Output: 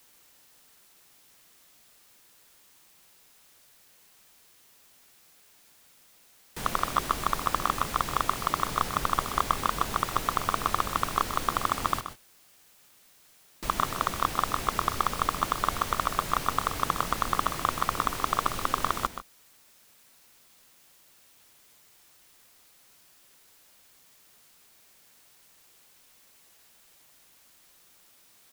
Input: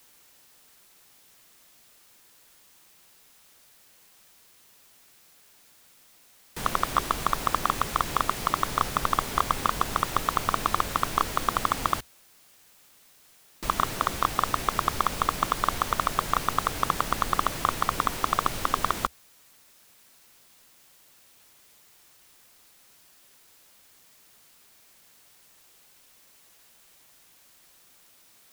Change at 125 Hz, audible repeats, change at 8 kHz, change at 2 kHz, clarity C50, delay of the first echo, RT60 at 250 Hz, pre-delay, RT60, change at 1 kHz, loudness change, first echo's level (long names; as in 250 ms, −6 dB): −1.5 dB, 1, −1.5 dB, −1.5 dB, no reverb audible, 128 ms, no reverb audible, no reverb audible, no reverb audible, −1.5 dB, −1.5 dB, −11.0 dB